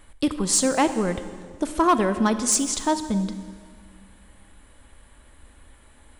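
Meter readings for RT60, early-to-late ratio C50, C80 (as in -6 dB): 1.8 s, 11.0 dB, 12.0 dB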